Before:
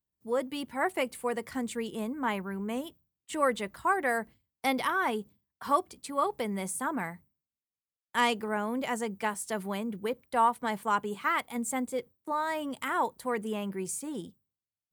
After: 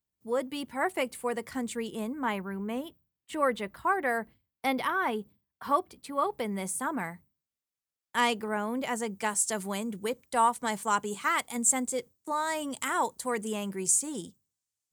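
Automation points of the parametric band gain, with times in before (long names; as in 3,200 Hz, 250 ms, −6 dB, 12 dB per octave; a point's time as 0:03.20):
parametric band 7,300 Hz 1.2 octaves
0:02.13 +2 dB
0:02.77 −6.5 dB
0:06.11 −6.5 dB
0:06.71 +2.5 dB
0:08.95 +2.5 dB
0:09.36 +14 dB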